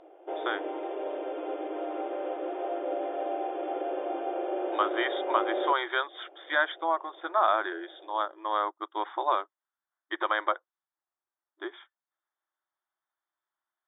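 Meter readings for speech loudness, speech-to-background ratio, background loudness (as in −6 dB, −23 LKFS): −30.0 LKFS, 3.5 dB, −33.5 LKFS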